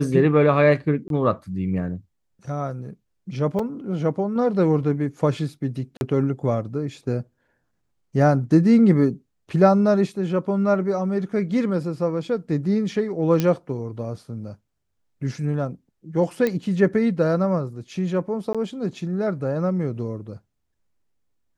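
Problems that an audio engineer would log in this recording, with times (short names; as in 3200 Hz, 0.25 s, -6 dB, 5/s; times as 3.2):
1.08–1.1 gap 22 ms
3.59 gap 4.2 ms
5.97–6.01 gap 41 ms
13.4 pop -9 dBFS
16.47 pop -11 dBFS
18.53–18.55 gap 16 ms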